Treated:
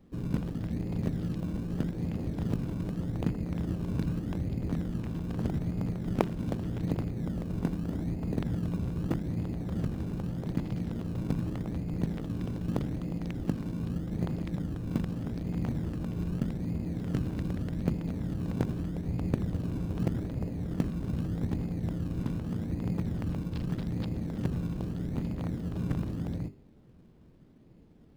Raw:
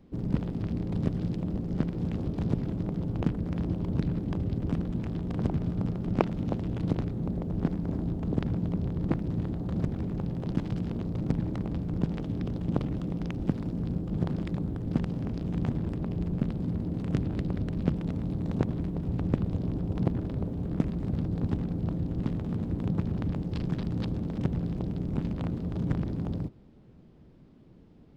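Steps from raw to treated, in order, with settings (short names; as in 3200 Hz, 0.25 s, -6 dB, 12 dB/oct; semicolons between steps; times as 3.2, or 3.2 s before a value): notches 50/100/150/200/250/300/350/400 Hz; in parallel at -11 dB: decimation with a swept rate 27×, swing 60% 0.82 Hz; on the sum: gain -3.5 dB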